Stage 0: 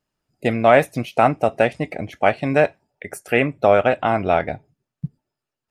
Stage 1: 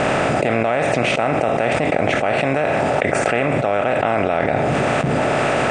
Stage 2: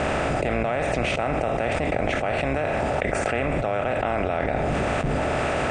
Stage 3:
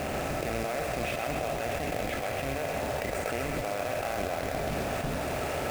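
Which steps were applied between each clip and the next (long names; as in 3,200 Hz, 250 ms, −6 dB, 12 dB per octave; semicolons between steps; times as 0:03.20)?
compressor on every frequency bin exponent 0.4; Butterworth low-pass 8,900 Hz 96 dB per octave; envelope flattener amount 100%; level −10.5 dB
sub-octave generator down 2 octaves, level −2 dB; level −6.5 dB
spectral magnitudes quantised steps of 15 dB; log-companded quantiser 4 bits; feedback echo with a high-pass in the loop 129 ms, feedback 78%, high-pass 280 Hz, level −7 dB; level −8.5 dB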